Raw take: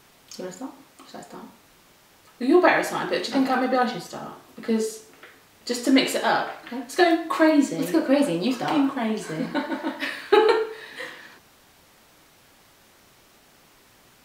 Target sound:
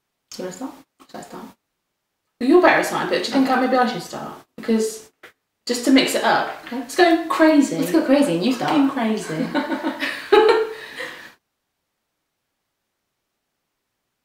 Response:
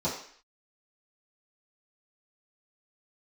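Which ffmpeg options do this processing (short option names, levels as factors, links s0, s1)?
-filter_complex "[0:a]agate=range=0.0501:threshold=0.00562:ratio=16:detection=peak,asplit=2[s0][s1];[s1]asoftclip=type=tanh:threshold=0.2,volume=0.447[s2];[s0][s2]amix=inputs=2:normalize=0,volume=1.19"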